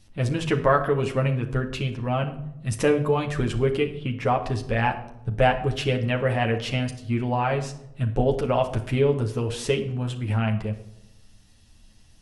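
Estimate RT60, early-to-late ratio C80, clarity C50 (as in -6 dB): 0.85 s, 14.5 dB, 11.0 dB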